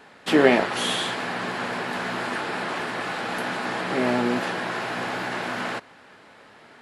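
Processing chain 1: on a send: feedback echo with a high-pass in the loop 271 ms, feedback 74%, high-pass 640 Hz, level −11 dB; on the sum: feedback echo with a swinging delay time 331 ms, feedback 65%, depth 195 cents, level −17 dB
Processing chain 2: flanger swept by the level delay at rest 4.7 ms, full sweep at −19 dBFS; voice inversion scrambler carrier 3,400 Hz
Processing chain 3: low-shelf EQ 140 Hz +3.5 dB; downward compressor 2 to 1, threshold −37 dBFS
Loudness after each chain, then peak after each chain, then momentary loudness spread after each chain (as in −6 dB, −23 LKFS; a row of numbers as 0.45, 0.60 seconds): −25.0, −24.5, −33.5 LKFS; −2.5, −5.0, −16.5 dBFS; 16, 13, 14 LU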